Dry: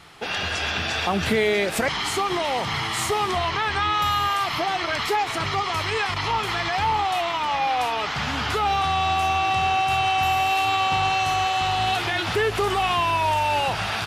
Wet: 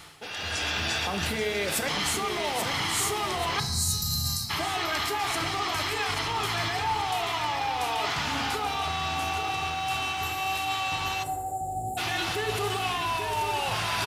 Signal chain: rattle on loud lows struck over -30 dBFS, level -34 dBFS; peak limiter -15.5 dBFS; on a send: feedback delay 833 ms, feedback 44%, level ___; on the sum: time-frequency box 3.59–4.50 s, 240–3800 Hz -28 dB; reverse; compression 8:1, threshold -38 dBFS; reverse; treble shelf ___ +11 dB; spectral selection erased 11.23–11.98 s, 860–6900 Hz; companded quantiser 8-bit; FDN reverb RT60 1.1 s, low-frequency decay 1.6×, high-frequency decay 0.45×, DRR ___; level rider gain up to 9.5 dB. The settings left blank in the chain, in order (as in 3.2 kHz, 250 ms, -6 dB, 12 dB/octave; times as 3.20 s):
-7 dB, 5.3 kHz, 8 dB